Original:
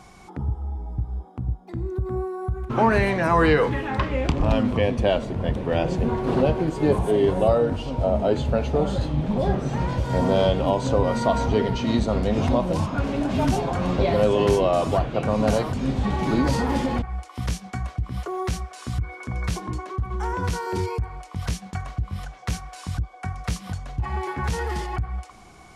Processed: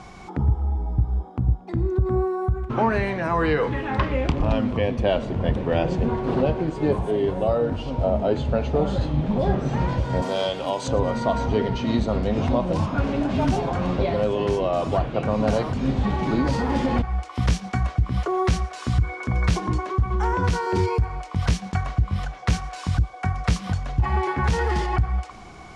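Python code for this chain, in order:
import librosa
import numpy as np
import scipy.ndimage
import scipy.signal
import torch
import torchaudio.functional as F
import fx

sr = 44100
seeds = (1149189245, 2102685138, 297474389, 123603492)

y = fx.air_absorb(x, sr, metres=67.0)
y = fx.rider(y, sr, range_db=5, speed_s=0.5)
y = fx.riaa(y, sr, side='recording', at=(10.22, 10.88))
y = fx.echo_thinned(y, sr, ms=115, feedback_pct=68, hz=1100.0, wet_db=-21)
y = y * librosa.db_to_amplitude(1.0)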